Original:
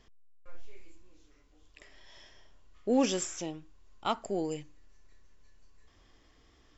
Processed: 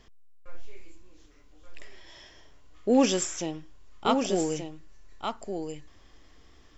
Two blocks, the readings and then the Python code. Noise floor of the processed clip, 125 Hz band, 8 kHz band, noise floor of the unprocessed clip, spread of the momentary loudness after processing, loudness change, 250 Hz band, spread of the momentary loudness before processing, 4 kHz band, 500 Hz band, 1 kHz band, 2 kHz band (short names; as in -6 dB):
-55 dBFS, +6.0 dB, n/a, -64 dBFS, 17 LU, +4.5 dB, +6.0 dB, 14 LU, +6.0 dB, +6.0 dB, +6.0 dB, +6.0 dB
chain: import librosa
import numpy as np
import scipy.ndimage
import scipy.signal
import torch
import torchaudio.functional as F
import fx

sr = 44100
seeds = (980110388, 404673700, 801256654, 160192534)

y = x + 10.0 ** (-6.5 / 20.0) * np.pad(x, (int(1178 * sr / 1000.0), 0))[:len(x)]
y = y * 10.0 ** (5.0 / 20.0)